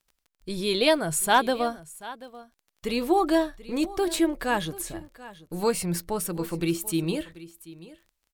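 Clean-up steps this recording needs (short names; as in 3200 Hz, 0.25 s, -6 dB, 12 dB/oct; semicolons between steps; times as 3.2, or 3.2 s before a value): clip repair -10 dBFS; de-click; inverse comb 0.736 s -18 dB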